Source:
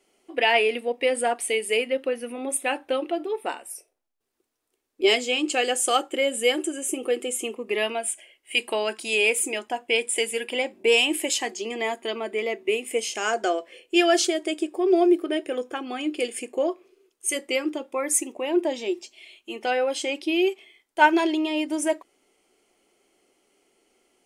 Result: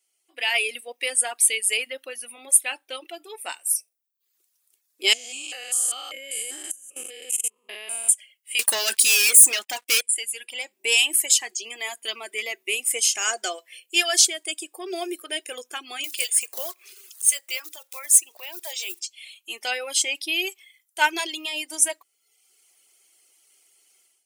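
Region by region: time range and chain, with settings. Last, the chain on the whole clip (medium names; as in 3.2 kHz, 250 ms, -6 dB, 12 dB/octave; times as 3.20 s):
5.13–8.09 s: spectrogram pixelated in time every 200 ms + level held to a coarse grid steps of 17 dB
8.59–10.01 s: band-stop 1.1 kHz, Q 20 + upward compressor, threshold -37 dBFS + waveshaping leveller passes 5
16.04–19.00 s: block-companded coder 5-bit + high-pass 610 Hz + upward compressor, threshold -29 dBFS
whole clip: reverb removal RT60 0.73 s; differentiator; level rider gain up to 14.5 dB; trim -1 dB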